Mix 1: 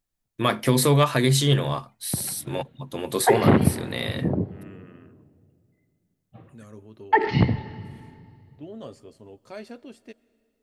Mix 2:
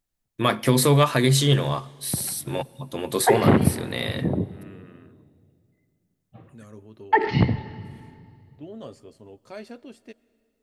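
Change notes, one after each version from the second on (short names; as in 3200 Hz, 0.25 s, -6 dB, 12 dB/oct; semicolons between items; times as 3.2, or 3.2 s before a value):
first voice: send on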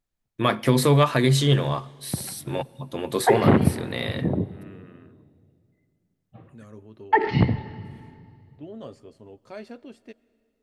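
master: add high shelf 5600 Hz -8 dB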